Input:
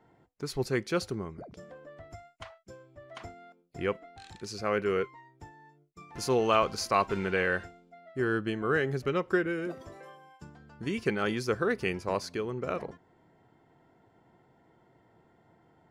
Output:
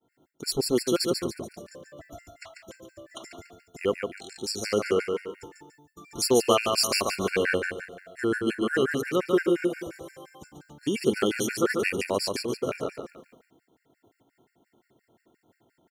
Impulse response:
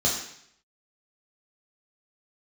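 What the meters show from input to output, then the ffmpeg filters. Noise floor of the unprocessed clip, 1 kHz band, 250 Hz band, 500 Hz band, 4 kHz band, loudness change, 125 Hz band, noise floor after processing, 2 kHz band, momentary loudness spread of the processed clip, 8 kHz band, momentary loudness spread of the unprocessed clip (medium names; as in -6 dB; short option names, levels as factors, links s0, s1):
-65 dBFS, -0.5 dB, +5.0 dB, +4.0 dB, +10.0 dB, +4.0 dB, -1.5 dB, -76 dBFS, +2.0 dB, 22 LU, +12.0 dB, 21 LU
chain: -af "crystalizer=i=7.5:c=0,firequalizer=gain_entry='entry(170,0);entry(250,8);entry(940,-3)':delay=0.05:min_phase=1,aecho=1:1:143|286|429|572|715:0.596|0.25|0.105|0.0441|0.0185,agate=range=0.0224:threshold=0.00282:ratio=3:detection=peak,afftfilt=real='re*gt(sin(2*PI*5.7*pts/sr)*(1-2*mod(floor(b*sr/1024/1400),2)),0)':imag='im*gt(sin(2*PI*5.7*pts/sr)*(1-2*mod(floor(b*sr/1024/1400),2)),0)':win_size=1024:overlap=0.75"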